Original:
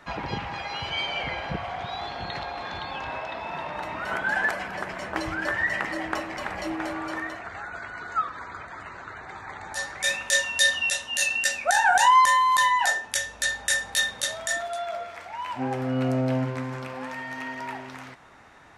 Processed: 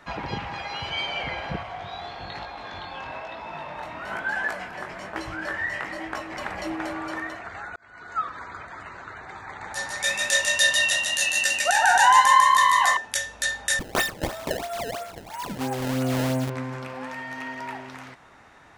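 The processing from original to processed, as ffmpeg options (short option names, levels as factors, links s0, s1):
-filter_complex "[0:a]asettb=1/sr,asplit=3[s0][s1][s2];[s0]atrim=end=1.634[s3];[s1]atrim=start=1.63:end=6.32,asetpts=PTS-STARTPTS,afade=t=in:d=0.004:c=qsin,afade=t=out:st=4.686:d=0.004:c=qsin,flanger=delay=17.5:depth=6.6:speed=1.1[s4];[s2]atrim=start=6.316[s5];[s3][s4]acrossfade=d=0.004:c1=hsin:c2=qsin[s6];[s6][s5]acrossfade=d=0.004:c1=qsin:c2=hsin,asettb=1/sr,asplit=3[s7][s8][s9];[s7]atrim=end=9.464[s10];[s8]atrim=start=9.46:end=12.97,asetpts=PTS-STARTPTS,afade=t=in:d=0.004:c=qsin,afade=t=out:st=3.506:d=0.004:c=qsin,asplit=9[s11][s12][s13][s14][s15][s16][s17][s18][s19];[s12]adelay=148,afreqshift=33,volume=0.708[s20];[s13]adelay=296,afreqshift=66,volume=0.389[s21];[s14]adelay=444,afreqshift=99,volume=0.214[s22];[s15]adelay=592,afreqshift=132,volume=0.117[s23];[s16]adelay=740,afreqshift=165,volume=0.0646[s24];[s17]adelay=888,afreqshift=198,volume=0.0355[s25];[s18]adelay=1036,afreqshift=231,volume=0.0195[s26];[s19]adelay=1184,afreqshift=264,volume=0.0108[s27];[s11][s20][s21][s22][s23][s24][s25][s26][s27]amix=inputs=9:normalize=0,atrim=end_sample=154791[s28];[s9]atrim=start=12.966[s29];[s10][s28]acrossfade=d=0.004:c1=hsin:c2=qsin[s30];[s30][s29]acrossfade=d=0.004:c1=qsin:c2=hsin,asettb=1/sr,asplit=3[s31][s32][s33];[s31]atrim=end=13.794[s34];[s32]atrim=start=13.79:end=16.5,asetpts=PTS-STARTPTS,afade=t=in:d=0.004:c=qsin,afade=t=out:st=2.706:d=0.004:c=qsin,acrusher=samples=22:mix=1:aa=0.000001:lfo=1:lforange=35.2:lforate=3[s35];[s33]atrim=start=16.496[s36];[s34][s35]acrossfade=d=0.004:c1=hsin:c2=qsin[s37];[s37][s36]acrossfade=d=0.004:c1=qsin:c2=hsin,asplit=2[s38][s39];[s38]atrim=end=7.76,asetpts=PTS-STARTPTS,afade=t=out:st=7.756:d=0.004:c=hsin[s40];[s39]atrim=start=7.76,asetpts=PTS-STARTPTS,afade=t=in:d=0.51[s41];[s40][s41]concat=n=2:v=0:a=1"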